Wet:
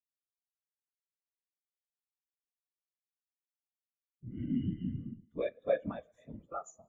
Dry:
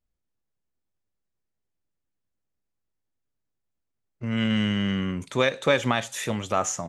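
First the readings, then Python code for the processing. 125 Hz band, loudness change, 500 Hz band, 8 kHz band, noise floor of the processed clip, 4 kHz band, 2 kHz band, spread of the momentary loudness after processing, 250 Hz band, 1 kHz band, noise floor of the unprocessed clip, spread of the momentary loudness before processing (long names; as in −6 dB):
−11.5 dB, −12.0 dB, −9.5 dB, below −25 dB, below −85 dBFS, below −30 dB, −23.5 dB, 16 LU, −12.0 dB, −17.0 dB, −81 dBFS, 7 LU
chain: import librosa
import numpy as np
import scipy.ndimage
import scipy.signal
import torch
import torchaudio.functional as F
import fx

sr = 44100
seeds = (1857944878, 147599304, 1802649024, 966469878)

y = fx.rev_schroeder(x, sr, rt60_s=3.5, comb_ms=30, drr_db=9.5)
y = fx.whisperise(y, sr, seeds[0])
y = fx.spectral_expand(y, sr, expansion=2.5)
y = y * 10.0 ** (-8.5 / 20.0)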